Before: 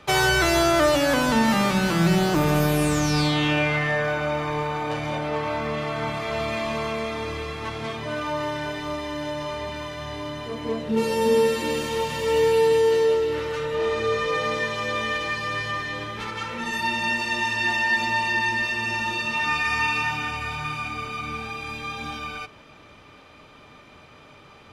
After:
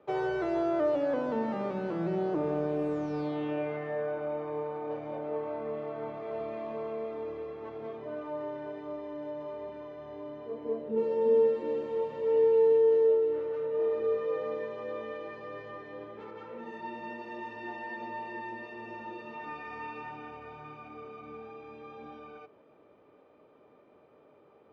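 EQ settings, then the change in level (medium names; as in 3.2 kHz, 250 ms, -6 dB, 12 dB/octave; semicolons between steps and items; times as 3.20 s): band-pass filter 450 Hz, Q 1.8; distance through air 57 m; -3.5 dB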